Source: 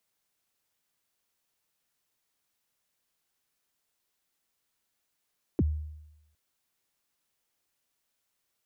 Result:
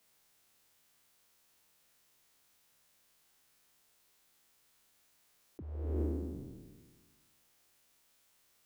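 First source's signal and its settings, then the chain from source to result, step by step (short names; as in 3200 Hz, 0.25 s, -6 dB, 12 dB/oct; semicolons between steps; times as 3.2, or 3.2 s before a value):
kick drum length 0.76 s, from 410 Hz, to 76 Hz, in 36 ms, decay 0.92 s, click off, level -19.5 dB
spectral trails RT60 1.53 s; negative-ratio compressor -37 dBFS, ratio -1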